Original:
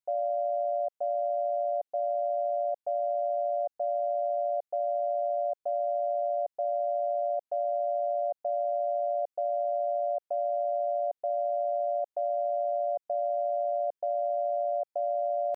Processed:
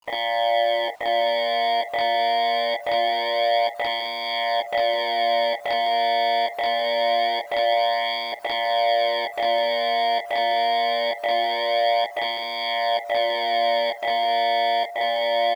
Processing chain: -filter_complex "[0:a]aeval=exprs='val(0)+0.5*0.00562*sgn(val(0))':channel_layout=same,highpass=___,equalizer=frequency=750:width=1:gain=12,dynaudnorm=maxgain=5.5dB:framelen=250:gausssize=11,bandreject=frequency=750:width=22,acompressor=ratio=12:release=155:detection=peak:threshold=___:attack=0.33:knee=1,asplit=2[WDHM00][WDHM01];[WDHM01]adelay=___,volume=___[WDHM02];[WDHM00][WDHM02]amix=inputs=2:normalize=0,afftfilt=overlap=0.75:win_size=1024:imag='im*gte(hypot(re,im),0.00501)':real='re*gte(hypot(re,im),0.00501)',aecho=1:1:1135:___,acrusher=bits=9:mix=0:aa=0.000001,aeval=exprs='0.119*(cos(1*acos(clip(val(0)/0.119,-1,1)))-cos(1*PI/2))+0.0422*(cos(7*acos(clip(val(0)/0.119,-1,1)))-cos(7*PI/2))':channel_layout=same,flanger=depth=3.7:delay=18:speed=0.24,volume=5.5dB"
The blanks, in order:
510, -25dB, 50, -4dB, 0.158